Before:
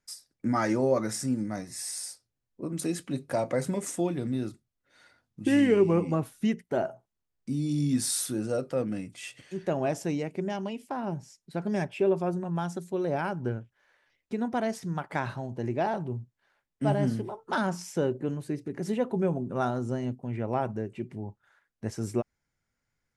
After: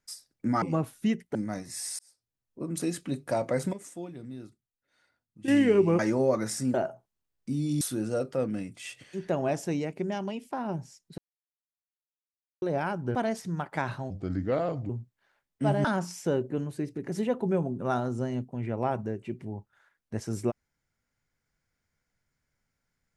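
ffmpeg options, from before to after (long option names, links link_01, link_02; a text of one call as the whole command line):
ffmpeg -i in.wav -filter_complex "[0:a]asplit=15[link_01][link_02][link_03][link_04][link_05][link_06][link_07][link_08][link_09][link_10][link_11][link_12][link_13][link_14][link_15];[link_01]atrim=end=0.622[link_16];[link_02]atrim=start=6.008:end=6.742[link_17];[link_03]atrim=start=1.368:end=2.01,asetpts=PTS-STARTPTS,afade=type=out:start_time=0.638:duration=0.004:curve=hsin[link_18];[link_04]atrim=start=2.01:end=3.752,asetpts=PTS-STARTPTS,afade=type=in:duration=0.7[link_19];[link_05]atrim=start=3.748:end=5.502,asetpts=PTS-STARTPTS,volume=-11dB[link_20];[link_06]atrim=start=5.498:end=6.012[link_21];[link_07]atrim=start=0.618:end=1.372[link_22];[link_08]atrim=start=6.738:end=7.812[link_23];[link_09]atrim=start=8.188:end=11.56,asetpts=PTS-STARTPTS,afade=type=out:start_time=3.368:duration=0.004:curve=hsin[link_24];[link_10]atrim=start=11.56:end=13,asetpts=PTS-STARTPTS,volume=0[link_25];[link_11]atrim=start=13:end=13.532,asetpts=PTS-STARTPTS,afade=type=in:duration=0.004:curve=hsin[link_26];[link_12]atrim=start=14.528:end=15.484[link_27];[link_13]atrim=start=15.48:end=16.1,asetpts=PTS-STARTPTS,asetrate=34398,aresample=44100[link_28];[link_14]atrim=start=16.096:end=17.052[link_29];[link_15]atrim=start=17.548[link_30];[link_16][link_17]acrossfade=duration=0.004:curve1=hsin:curve2=hsin[link_31];[link_18][link_19]concat=n=2:v=0:a=1[link_32];[link_31][link_32]acrossfade=duration=0.004:curve1=hsin:curve2=hsin[link_33];[link_33][link_20]acrossfade=duration=0.004:curve1=hsin:curve2=hsin[link_34];[link_34][link_21]acrossfade=duration=0.004:curve1=hsin:curve2=hsin[link_35];[link_35][link_22]acrossfade=duration=0.004:curve1=hsin:curve2=hsin[link_36];[link_36][link_23]acrossfade=duration=0.004:curve1=hsin:curve2=hsin[link_37];[link_24][link_25][link_26]concat=n=3:v=0:a=1[link_38];[link_37][link_38]acrossfade=duration=0.004:curve1=hsin:curve2=hsin[link_39];[link_39][link_27]acrossfade=duration=0.004:curve1=hsin:curve2=hsin[link_40];[link_40][link_28]acrossfade=duration=0.004:curve1=hsin:curve2=hsin[link_41];[link_41][link_29]acrossfade=duration=0.004:curve1=hsin:curve2=hsin[link_42];[link_42][link_30]acrossfade=duration=0.004:curve1=hsin:curve2=hsin" out.wav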